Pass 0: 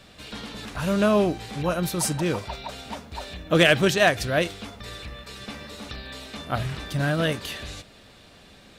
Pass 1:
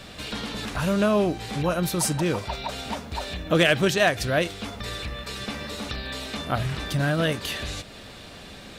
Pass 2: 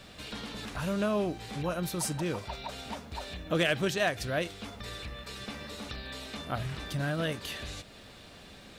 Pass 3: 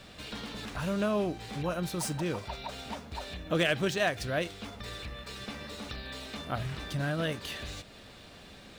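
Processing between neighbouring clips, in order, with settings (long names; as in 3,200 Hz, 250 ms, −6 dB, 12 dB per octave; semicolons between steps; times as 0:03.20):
downward compressor 1.5 to 1, threshold −42 dBFS, peak gain reduction 10.5 dB; level +8 dB
bit reduction 11 bits; level −8 dB
running median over 3 samples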